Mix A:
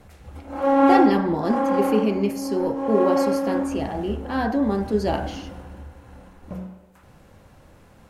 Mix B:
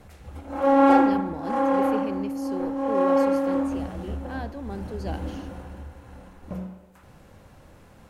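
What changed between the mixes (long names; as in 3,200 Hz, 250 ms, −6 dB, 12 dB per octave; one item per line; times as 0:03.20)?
speech −11.0 dB
reverb: off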